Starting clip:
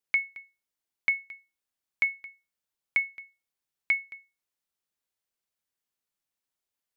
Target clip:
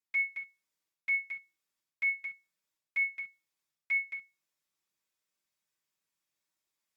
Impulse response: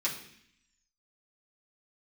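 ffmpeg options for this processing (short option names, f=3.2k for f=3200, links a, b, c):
-filter_complex "[0:a]areverse,acompressor=threshold=-33dB:ratio=12,areverse[a];[1:a]atrim=start_sample=2205,atrim=end_sample=3528[b];[a][b]afir=irnorm=-1:irlink=0,volume=-3dB" -ar 48000 -c:a libopus -b:a 64k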